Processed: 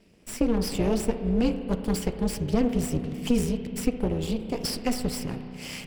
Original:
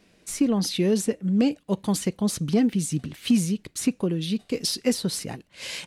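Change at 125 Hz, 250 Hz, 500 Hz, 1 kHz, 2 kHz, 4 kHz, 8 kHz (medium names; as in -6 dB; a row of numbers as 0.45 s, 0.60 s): -1.5 dB, -3.0 dB, -0.5 dB, +2.0 dB, -2.0 dB, -5.0 dB, -6.0 dB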